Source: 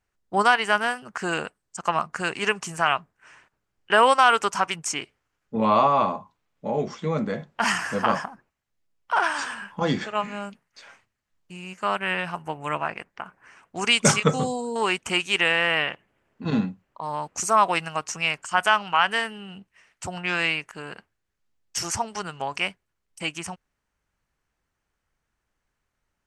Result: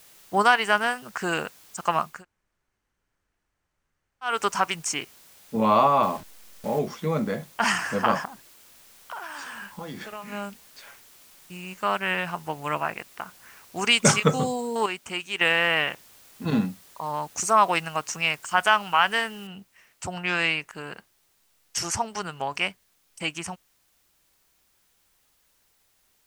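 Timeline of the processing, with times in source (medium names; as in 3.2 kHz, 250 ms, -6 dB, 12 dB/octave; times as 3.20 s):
2.13–4.33 s: room tone, crossfade 0.24 s
6.03–6.79 s: send-on-delta sampling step -38 dBFS
8.25–10.32 s: compression, threshold -34 dBFS
14.86–15.41 s: gain -7.5 dB
19.47 s: noise floor step -53 dB -67 dB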